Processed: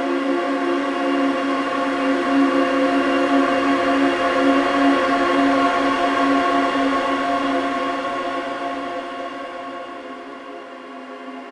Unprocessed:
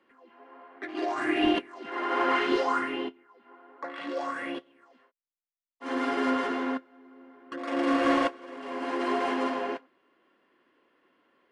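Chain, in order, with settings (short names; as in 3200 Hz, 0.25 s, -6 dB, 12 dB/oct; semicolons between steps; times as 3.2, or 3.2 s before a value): echo 0.113 s -6.5 dB; Paulstretch 14×, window 0.50 s, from 7.77; gain +6 dB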